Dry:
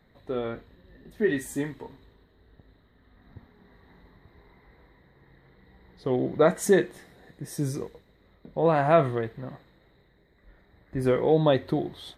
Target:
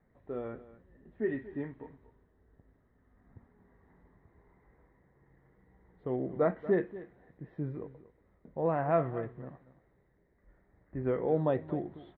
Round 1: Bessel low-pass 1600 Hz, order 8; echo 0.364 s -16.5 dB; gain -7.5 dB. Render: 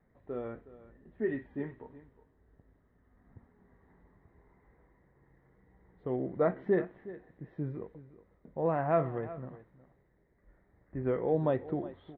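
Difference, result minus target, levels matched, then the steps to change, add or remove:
echo 0.13 s late
change: echo 0.234 s -16.5 dB

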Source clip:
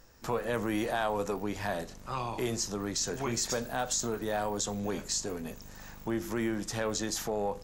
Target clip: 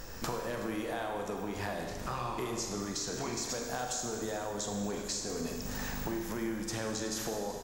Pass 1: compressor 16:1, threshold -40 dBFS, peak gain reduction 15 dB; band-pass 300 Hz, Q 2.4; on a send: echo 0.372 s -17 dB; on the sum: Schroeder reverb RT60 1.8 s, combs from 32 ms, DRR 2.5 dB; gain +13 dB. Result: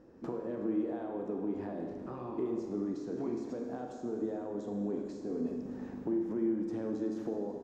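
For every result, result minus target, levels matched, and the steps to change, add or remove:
compressor: peak gain reduction -7 dB; 250 Hz band +5.0 dB
change: compressor 16:1, threshold -47.5 dBFS, peak gain reduction 22 dB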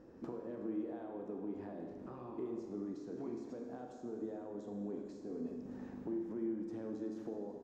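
250 Hz band +5.0 dB
remove: band-pass 300 Hz, Q 2.4

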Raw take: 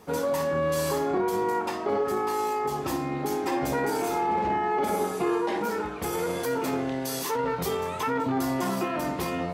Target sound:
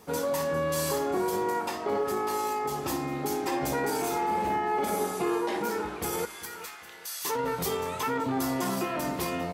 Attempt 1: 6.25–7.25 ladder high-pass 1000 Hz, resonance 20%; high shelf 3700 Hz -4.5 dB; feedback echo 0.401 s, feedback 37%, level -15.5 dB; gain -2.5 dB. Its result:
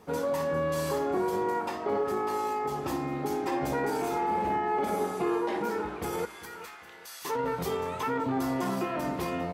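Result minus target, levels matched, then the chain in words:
8000 Hz band -8.0 dB
6.25–7.25 ladder high-pass 1000 Hz, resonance 20%; high shelf 3700 Hz +6 dB; feedback echo 0.401 s, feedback 37%, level -15.5 dB; gain -2.5 dB

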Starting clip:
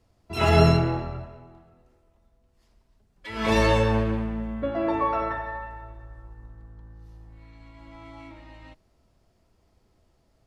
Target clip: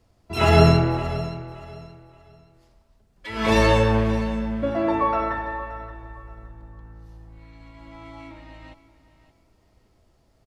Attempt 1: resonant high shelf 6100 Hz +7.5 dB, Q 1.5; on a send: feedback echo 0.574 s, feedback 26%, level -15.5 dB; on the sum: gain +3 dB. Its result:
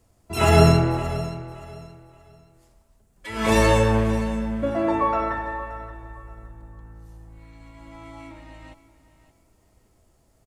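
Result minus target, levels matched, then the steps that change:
8000 Hz band +6.5 dB
remove: resonant high shelf 6100 Hz +7.5 dB, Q 1.5

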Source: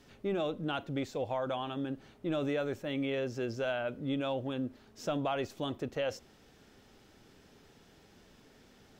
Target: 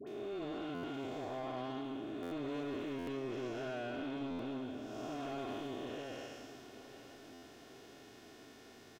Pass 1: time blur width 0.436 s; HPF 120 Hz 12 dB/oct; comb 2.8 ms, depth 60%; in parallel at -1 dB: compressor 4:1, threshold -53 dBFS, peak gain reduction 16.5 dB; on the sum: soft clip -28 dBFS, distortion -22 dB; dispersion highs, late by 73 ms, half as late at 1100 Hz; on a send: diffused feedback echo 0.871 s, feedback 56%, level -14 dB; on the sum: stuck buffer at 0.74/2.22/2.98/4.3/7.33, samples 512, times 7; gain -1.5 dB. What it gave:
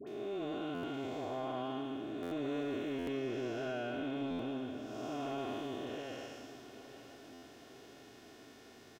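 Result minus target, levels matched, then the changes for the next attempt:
soft clip: distortion -9 dB
change: soft clip -35 dBFS, distortion -13 dB

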